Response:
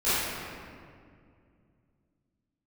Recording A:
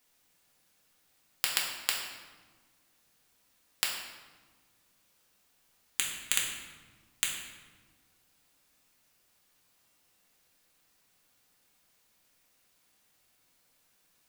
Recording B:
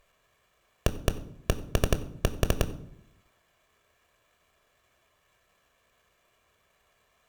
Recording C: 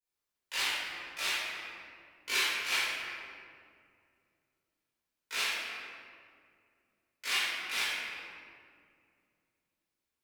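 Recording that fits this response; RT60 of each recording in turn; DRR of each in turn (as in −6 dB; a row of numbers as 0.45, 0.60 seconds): C; 1.5, 0.70, 2.2 seconds; −3.0, 9.0, −17.5 decibels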